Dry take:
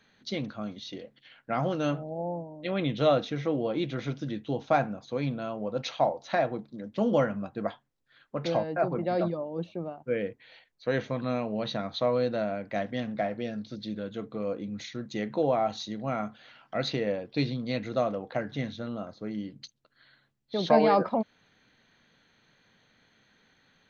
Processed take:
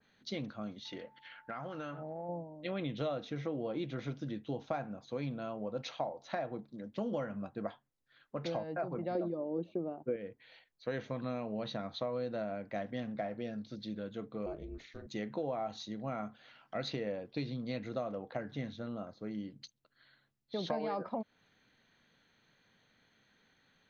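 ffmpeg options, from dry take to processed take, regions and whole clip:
-filter_complex "[0:a]asettb=1/sr,asplit=3[s0][s1][s2];[s0]atrim=end=0.854[s3];[s1]atrim=start=0.85:end=2.29,asetpts=PTS-STARTPTS,afade=t=in:d=0.004:c=qsin,afade=t=out:st=1.436:d=0.004:c=qsin,equalizer=f=1500:t=o:w=1.6:g=10.5,acompressor=threshold=0.0251:ratio=10:attack=3.2:release=140:knee=1:detection=peak,aeval=exprs='val(0)+0.00158*sin(2*PI*880*n/s)':c=same[s4];[s2]atrim=start=2.286[s5];[s3][s4]acrossfade=d=0.004:c1=hsin:c2=qsin[s6];[s6][s5]acrossfade=d=0.004:c1=qsin:c2=hsin,asettb=1/sr,asplit=3[s7][s8][s9];[s7]atrim=end=9.154[s10];[s8]atrim=start=9.15:end=10.16,asetpts=PTS-STARTPTS,afade=t=in:d=0.004:c=qsin,afade=t=out:st=1.006:d=0.004:c=qsin,equalizer=f=350:t=o:w=1.5:g=12.5,bandreject=f=5500:w=7.6[s11];[s9]atrim=start=10.156[s12];[s10][s11]acrossfade=d=0.004:c1=hsin:c2=qsin[s13];[s13][s12]acrossfade=d=0.004:c1=qsin:c2=hsin,asettb=1/sr,asplit=3[s14][s15][s16];[s14]atrim=end=14.464[s17];[s15]atrim=start=14.46:end=15.07,asetpts=PTS-STARTPTS,afade=t=in:d=0.004:c=qsin,afade=t=out:st=0.606:d=0.004:c=qsin,acrossover=split=2800[s18][s19];[s19]acompressor=threshold=0.002:ratio=4:attack=1:release=60[s20];[s18][s20]amix=inputs=2:normalize=0,bandreject=f=60:t=h:w=6,bandreject=f=120:t=h:w=6,bandreject=f=180:t=h:w=6,bandreject=f=240:t=h:w=6,bandreject=f=300:t=h:w=6,bandreject=f=360:t=h:w=6,bandreject=f=420:t=h:w=6,bandreject=f=480:t=h:w=6,aeval=exprs='val(0)*sin(2*PI*140*n/s)':c=same[s21];[s16]atrim=start=15.066[s22];[s17][s21]acrossfade=d=0.004:c1=hsin:c2=qsin[s23];[s23][s22]acrossfade=d=0.004:c1=qsin:c2=hsin,acompressor=threshold=0.0447:ratio=6,adynamicequalizer=threshold=0.00355:dfrequency=1800:dqfactor=0.7:tfrequency=1800:tqfactor=0.7:attack=5:release=100:ratio=0.375:range=1.5:mode=cutabove:tftype=highshelf,volume=0.531"

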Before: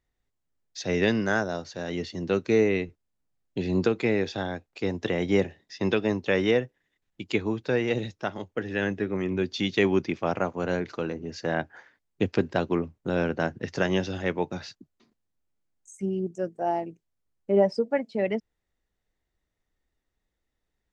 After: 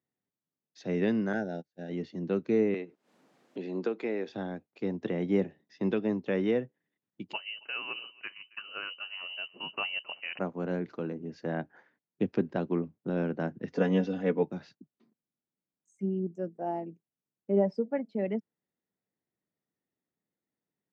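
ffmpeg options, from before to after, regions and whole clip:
-filter_complex "[0:a]asettb=1/sr,asplit=3[s0][s1][s2];[s0]atrim=end=1.334[s3];[s1]atrim=start=1.33:end=1.91,asetpts=PTS-STARTPTS,afade=t=in:d=0.004:c=qsin,afade=t=out:st=0.576:d=0.004:c=qsin,agate=range=0.0251:threshold=0.02:ratio=16:release=100:detection=peak,asuperstop=centerf=1100:order=12:qfactor=2.2[s4];[s2]atrim=start=1.906[s5];[s3][s4]acrossfade=d=0.004:c1=hsin:c2=qsin[s6];[s6][s5]acrossfade=d=0.004:c1=qsin:c2=hsin,asettb=1/sr,asplit=3[s7][s8][s9];[s7]atrim=end=2.744[s10];[s8]atrim=start=2.74:end=4.29,asetpts=PTS-STARTPTS,afade=t=in:d=0.004:c=qsin,afade=t=out:st=1.546:d=0.004:c=qsin,highpass=360,acompressor=mode=upward:threshold=0.0398:ratio=2.5:attack=3.2:release=140:knee=2.83:detection=peak[s11];[s9]atrim=start=4.286[s12];[s10][s11]acrossfade=d=0.004:c1=hsin:c2=qsin[s13];[s13][s12]acrossfade=d=0.004:c1=qsin:c2=hsin,asettb=1/sr,asplit=3[s14][s15][s16];[s14]atrim=end=7.334[s17];[s15]atrim=start=7.33:end=10.39,asetpts=PTS-STARTPTS,afade=t=in:d=0.004:c=qsin,afade=t=out:st=3.056:d=0.004:c=qsin,asplit=2[s18][s19];[s19]adelay=273,lowpass=f=980:p=1,volume=0.112,asplit=2[s20][s21];[s21]adelay=273,lowpass=f=980:p=1,volume=0.22[s22];[s18][s20][s22]amix=inputs=3:normalize=0,atrim=end_sample=134946,lowpass=f=2600:t=q:w=0.5098,lowpass=f=2600:t=q:w=0.6013,lowpass=f=2600:t=q:w=0.9,lowpass=f=2600:t=q:w=2.563,afreqshift=-3100[s23];[s16]atrim=start=10.386[s24];[s17][s23]acrossfade=d=0.004:c1=hsin:c2=qsin[s25];[s25][s24]acrossfade=d=0.004:c1=qsin:c2=hsin,asettb=1/sr,asplit=3[s26][s27][s28];[s26]atrim=end=13.704[s29];[s27]atrim=start=13.7:end=14.43,asetpts=PTS-STARTPTS,afade=t=in:d=0.004:c=qsin,afade=t=out:st=0.726:d=0.004:c=qsin,equalizer=f=410:t=o:w=0.61:g=6.5,aecho=1:1:4.1:0.84,atrim=end_sample=32193[s30];[s28]atrim=start=14.426[s31];[s29][s30]acrossfade=d=0.004:c1=hsin:c2=qsin[s32];[s32][s31]acrossfade=d=0.004:c1=qsin:c2=hsin,highpass=f=170:w=0.5412,highpass=f=170:w=1.3066,aemphasis=mode=reproduction:type=riaa,volume=0.376"

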